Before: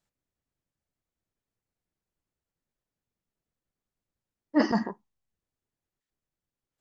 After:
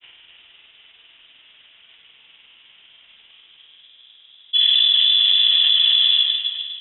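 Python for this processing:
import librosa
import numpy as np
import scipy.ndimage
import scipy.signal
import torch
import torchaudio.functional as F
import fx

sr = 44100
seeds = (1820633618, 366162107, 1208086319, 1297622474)

y = fx.rattle_buzz(x, sr, strikes_db=-30.0, level_db=-26.0)
y = fx.filter_sweep_bandpass(y, sr, from_hz=790.0, to_hz=350.0, start_s=3.14, end_s=4.0, q=1.4)
y = fx.rev_schroeder(y, sr, rt60_s=2.1, comb_ms=33, drr_db=-3.5)
y = fx.granulator(y, sr, seeds[0], grain_ms=100.0, per_s=20.0, spray_ms=24.0, spread_st=0)
y = fx.echo_feedback(y, sr, ms=257, feedback_pct=25, wet_db=-7.0)
y = fx.freq_invert(y, sr, carrier_hz=3700)
y = fx.env_flatten(y, sr, amount_pct=100)
y = y * 10.0 ** (5.0 / 20.0)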